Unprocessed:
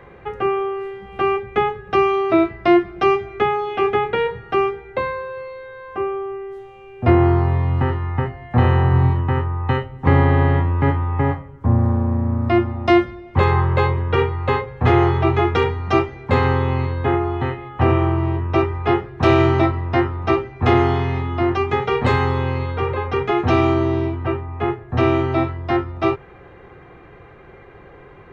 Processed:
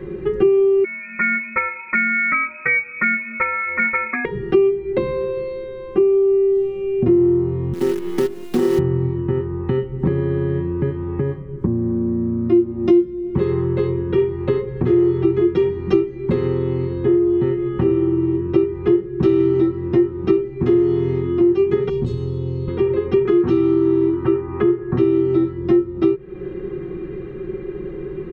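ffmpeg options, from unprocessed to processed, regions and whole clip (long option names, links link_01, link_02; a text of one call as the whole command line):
ffmpeg -i in.wav -filter_complex "[0:a]asettb=1/sr,asplit=3[link_01][link_02][link_03];[link_01]atrim=end=0.844[link_04];[link_02]atrim=start=0.84:end=4.25,asetpts=PTS-STARTPTS,afade=type=in:duration=0.004:curve=qsin,afade=type=out:start_time=3.406:duration=0.004:curve=qsin,equalizer=frequency=1300:width_type=o:width=0.66:gain=8,lowpass=frequency=2200:width_type=q:width=0.5098,lowpass=frequency=2200:width_type=q:width=0.6013,lowpass=frequency=2200:width_type=q:width=0.9,lowpass=frequency=2200:width_type=q:width=2.563,afreqshift=-2600[link_05];[link_03]atrim=start=4.246[link_06];[link_04][link_05]acrossfade=duration=0.004:curve1=hsin:curve2=qsin[link_07];[link_07][link_06]acrossfade=duration=0.004:curve1=qsin:curve2=hsin,asettb=1/sr,asplit=3[link_08][link_09][link_10];[link_08]atrim=end=7.734[link_11];[link_09]atrim=start=7.73:end=8.79,asetpts=PTS-STARTPTS,afade=type=in:duration=0.004:curve=qsin,afade=type=out:start_time=1.056:duration=0.004:curve=qsin,highpass=frequency=240:width=0.5412,highpass=frequency=240:width=1.3066,acrusher=bits=5:dc=4:mix=0:aa=0.000001[link_12];[link_10]atrim=start=8.786[link_13];[link_11][link_12]acrossfade=duration=0.004:curve1=hsin:curve2=qsin[link_14];[link_14][link_13]acrossfade=duration=0.004:curve1=qsin:curve2=hsin,asettb=1/sr,asplit=3[link_15][link_16][link_17];[link_15]atrim=end=21.894[link_18];[link_16]atrim=start=21.89:end=22.68,asetpts=PTS-STARTPTS,afade=type=in:duration=0.004:curve=qsin,afade=type=out:start_time=0.786:duration=0.004:curve=qsin,equalizer=frequency=2000:width_type=o:width=1.1:gain=-12.5,acrossover=split=150|3000[link_19][link_20][link_21];[link_20]acompressor=threshold=-36dB:ratio=3:attack=3.2:release=140:knee=2.83:detection=peak[link_22];[link_19][link_22][link_21]amix=inputs=3:normalize=0[link_23];[link_17]atrim=start=22.676[link_24];[link_18][link_23]acrossfade=duration=0.004:curve1=hsin:curve2=qsin[link_25];[link_25][link_24]acrossfade=duration=0.004:curve1=qsin:curve2=hsin,asettb=1/sr,asplit=3[link_26][link_27][link_28];[link_26]atrim=end=23.254[link_29];[link_27]atrim=start=23.25:end=24.98,asetpts=PTS-STARTPTS,afade=type=in:duration=0.004:curve=qsin,afade=type=out:start_time=1.726:duration=0.004:curve=qsin,equalizer=frequency=1200:width_type=o:width=1.7:gain=12.5,acrossover=split=380|3000[link_30][link_31][link_32];[link_31]acompressor=threshold=-18dB:ratio=6:attack=3.2:release=140:knee=2.83:detection=peak[link_33];[link_30][link_33][link_32]amix=inputs=3:normalize=0[link_34];[link_28]atrim=start=24.976[link_35];[link_29][link_34]acrossfade=duration=0.004:curve1=hsin:curve2=qsin[link_36];[link_36][link_35]acrossfade=duration=0.004:curve1=qsin:curve2=hsin,lowshelf=frequency=500:width_type=q:width=3:gain=10.5,acompressor=threshold=-18dB:ratio=5,aecho=1:1:5.4:0.72" out.wav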